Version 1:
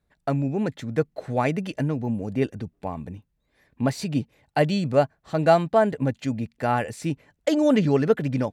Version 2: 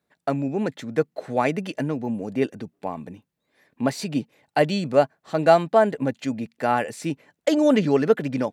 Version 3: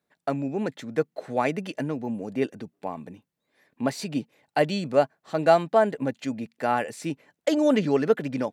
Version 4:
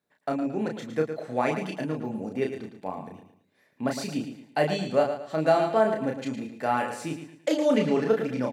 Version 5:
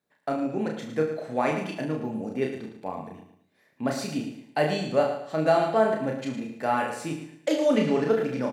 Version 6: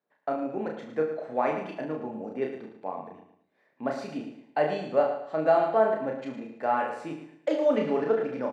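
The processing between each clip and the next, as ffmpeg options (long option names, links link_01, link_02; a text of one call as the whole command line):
ffmpeg -i in.wav -af "highpass=200,volume=2dB" out.wav
ffmpeg -i in.wav -af "lowshelf=frequency=80:gain=-7.5,volume=-2.5dB" out.wav
ffmpeg -i in.wav -filter_complex "[0:a]asplit=2[link_01][link_02];[link_02]adelay=32,volume=-3.5dB[link_03];[link_01][link_03]amix=inputs=2:normalize=0,aecho=1:1:111|222|333|444:0.355|0.124|0.0435|0.0152,alimiter=level_in=6dB:limit=-1dB:release=50:level=0:latency=1,volume=-9dB" out.wav
ffmpeg -i in.wav -af "aecho=1:1:45|68:0.316|0.251" out.wav
ffmpeg -i in.wav -af "bandpass=frequency=740:width_type=q:width=0.61:csg=0" out.wav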